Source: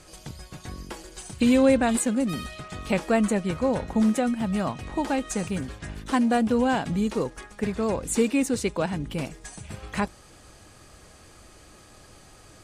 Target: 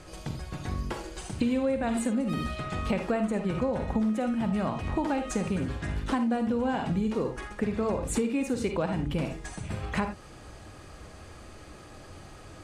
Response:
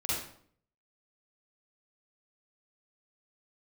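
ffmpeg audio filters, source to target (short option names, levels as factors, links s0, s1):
-filter_complex "[0:a]highshelf=f=4100:g=-10.5,asplit=2[s0][s1];[1:a]atrim=start_sample=2205,afade=t=out:st=0.14:d=0.01,atrim=end_sample=6615[s2];[s1][s2]afir=irnorm=-1:irlink=0,volume=0.335[s3];[s0][s3]amix=inputs=2:normalize=0,acompressor=threshold=0.0447:ratio=6,volume=1.26"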